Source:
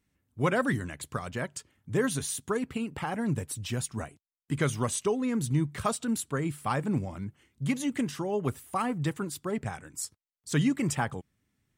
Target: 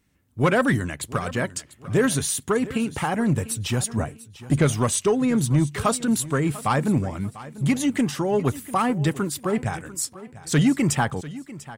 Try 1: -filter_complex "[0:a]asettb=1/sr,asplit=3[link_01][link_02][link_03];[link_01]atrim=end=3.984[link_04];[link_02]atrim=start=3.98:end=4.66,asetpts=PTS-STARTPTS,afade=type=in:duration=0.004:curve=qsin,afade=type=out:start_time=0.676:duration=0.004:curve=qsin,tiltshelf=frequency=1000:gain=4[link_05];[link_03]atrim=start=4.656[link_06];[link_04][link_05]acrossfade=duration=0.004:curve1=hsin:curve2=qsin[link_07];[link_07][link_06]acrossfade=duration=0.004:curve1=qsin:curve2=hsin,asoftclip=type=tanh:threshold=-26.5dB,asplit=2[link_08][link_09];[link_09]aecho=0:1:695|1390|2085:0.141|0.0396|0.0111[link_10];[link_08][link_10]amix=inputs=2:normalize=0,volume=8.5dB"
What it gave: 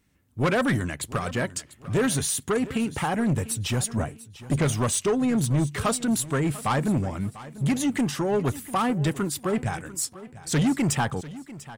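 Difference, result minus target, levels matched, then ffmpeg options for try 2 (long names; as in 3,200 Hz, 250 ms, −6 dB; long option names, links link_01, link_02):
soft clipping: distortion +9 dB
-filter_complex "[0:a]asettb=1/sr,asplit=3[link_01][link_02][link_03];[link_01]atrim=end=3.984[link_04];[link_02]atrim=start=3.98:end=4.66,asetpts=PTS-STARTPTS,afade=type=in:duration=0.004:curve=qsin,afade=type=out:start_time=0.676:duration=0.004:curve=qsin,tiltshelf=frequency=1000:gain=4[link_05];[link_03]atrim=start=4.656[link_06];[link_04][link_05]acrossfade=duration=0.004:curve1=hsin:curve2=qsin[link_07];[link_07][link_06]acrossfade=duration=0.004:curve1=qsin:curve2=hsin,asoftclip=type=tanh:threshold=-19dB,asplit=2[link_08][link_09];[link_09]aecho=0:1:695|1390|2085:0.141|0.0396|0.0111[link_10];[link_08][link_10]amix=inputs=2:normalize=0,volume=8.5dB"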